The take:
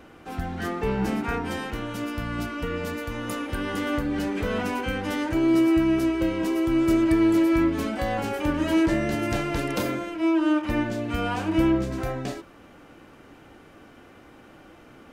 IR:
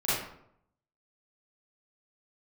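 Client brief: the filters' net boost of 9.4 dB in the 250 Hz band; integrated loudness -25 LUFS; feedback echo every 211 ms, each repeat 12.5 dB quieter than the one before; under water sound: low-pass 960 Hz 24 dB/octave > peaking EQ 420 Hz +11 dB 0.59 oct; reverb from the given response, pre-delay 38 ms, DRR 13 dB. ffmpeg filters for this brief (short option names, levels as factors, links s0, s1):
-filter_complex "[0:a]equalizer=f=250:t=o:g=8,aecho=1:1:211|422|633:0.237|0.0569|0.0137,asplit=2[s0][s1];[1:a]atrim=start_sample=2205,adelay=38[s2];[s1][s2]afir=irnorm=-1:irlink=0,volume=0.0668[s3];[s0][s3]amix=inputs=2:normalize=0,lowpass=f=960:w=0.5412,lowpass=f=960:w=1.3066,equalizer=f=420:t=o:w=0.59:g=11,volume=0.376"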